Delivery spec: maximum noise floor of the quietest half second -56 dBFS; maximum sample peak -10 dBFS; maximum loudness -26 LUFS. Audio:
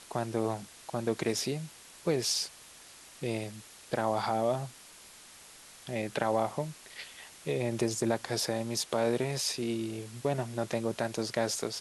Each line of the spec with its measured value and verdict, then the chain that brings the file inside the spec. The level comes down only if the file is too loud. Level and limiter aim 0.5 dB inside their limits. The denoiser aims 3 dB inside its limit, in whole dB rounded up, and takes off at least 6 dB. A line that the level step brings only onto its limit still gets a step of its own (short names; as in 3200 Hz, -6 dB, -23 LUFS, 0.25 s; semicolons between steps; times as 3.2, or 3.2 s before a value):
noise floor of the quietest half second -53 dBFS: fail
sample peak -11.5 dBFS: OK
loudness -32.5 LUFS: OK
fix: denoiser 6 dB, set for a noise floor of -53 dBFS